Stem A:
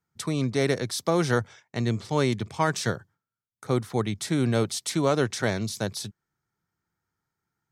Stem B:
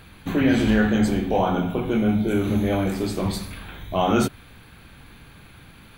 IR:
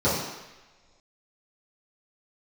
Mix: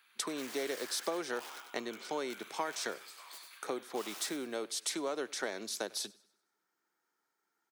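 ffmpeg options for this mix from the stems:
-filter_complex "[0:a]acompressor=threshold=-34dB:ratio=6,volume=2dB,asplit=2[a][b];[b]volume=-23.5dB[c];[1:a]highpass=f=1.1k:w=0.5412,highpass=f=1.1k:w=1.3066,aeval=exprs='(mod(23.7*val(0)+1,2)-1)/23.7':c=same,volume=-15dB,asplit=2[d][e];[e]volume=-6dB[f];[c][f]amix=inputs=2:normalize=0,aecho=0:1:97|194|291|388|485|582:1|0.41|0.168|0.0689|0.0283|0.0116[g];[a][d][g]amix=inputs=3:normalize=0,highpass=f=300:w=0.5412,highpass=f=300:w=1.3066"

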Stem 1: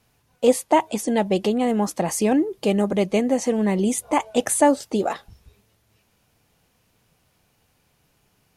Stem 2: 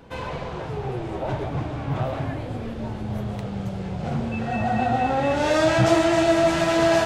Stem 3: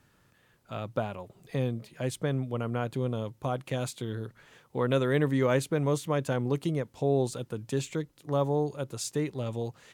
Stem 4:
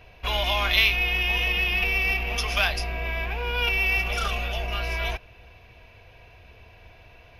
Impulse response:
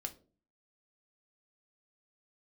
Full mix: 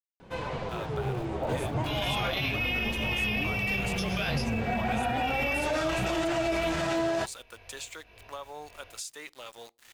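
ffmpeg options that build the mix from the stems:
-filter_complex "[0:a]adelay=1050,volume=-18.5dB[a];[1:a]alimiter=limit=-13.5dB:level=0:latency=1,flanger=delay=5.3:depth=9.9:regen=55:speed=0.51:shape=sinusoidal,adelay=200,volume=1dB[b];[2:a]highpass=1.2k,aeval=exprs='val(0)*gte(abs(val(0)),0.00251)':c=same,acompressor=threshold=-40dB:ratio=6,volume=2.5dB,asplit=2[c][d];[d]volume=-14dB[e];[3:a]bass=f=250:g=-5,treble=f=4k:g=0,flanger=delay=19:depth=3:speed=0.74,tremolo=f=1.8:d=0.61,adelay=1600,volume=2.5dB[f];[4:a]atrim=start_sample=2205[g];[e][g]afir=irnorm=-1:irlink=0[h];[a][b][c][f][h]amix=inputs=5:normalize=0,alimiter=limit=-20.5dB:level=0:latency=1:release=37"

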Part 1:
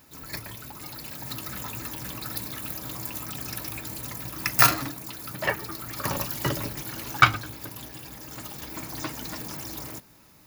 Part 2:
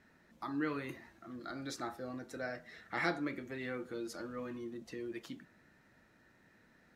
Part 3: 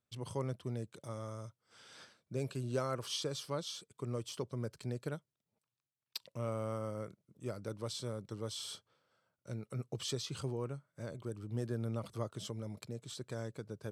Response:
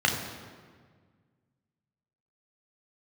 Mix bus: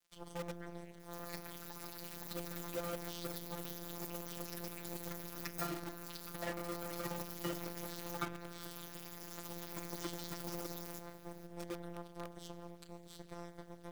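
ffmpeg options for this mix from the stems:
-filter_complex "[0:a]adelay=1000,volume=-3.5dB,asplit=2[a][b];[b]volume=-22.5dB[c];[1:a]volume=-10dB[d];[2:a]aeval=exprs='sgn(val(0))*max(abs(val(0))-0.00335,0)':c=same,volume=0.5dB,asplit=3[e][f][g];[f]volume=-18dB[h];[g]apad=whole_len=306539[i];[d][i]sidechaincompress=threshold=-45dB:ratio=8:attack=7.9:release=106[j];[3:a]atrim=start_sample=2205[k];[c][h]amix=inputs=2:normalize=0[l];[l][k]afir=irnorm=-1:irlink=0[m];[a][j][e][m]amix=inputs=4:normalize=0,acrossover=split=220|530[n][o][p];[n]acompressor=threshold=-45dB:ratio=4[q];[o]acompressor=threshold=-36dB:ratio=4[r];[p]acompressor=threshold=-42dB:ratio=4[s];[q][r][s]amix=inputs=3:normalize=0,afftfilt=real='hypot(re,im)*cos(PI*b)':imag='0':win_size=1024:overlap=0.75,acrusher=bits=8:dc=4:mix=0:aa=0.000001"

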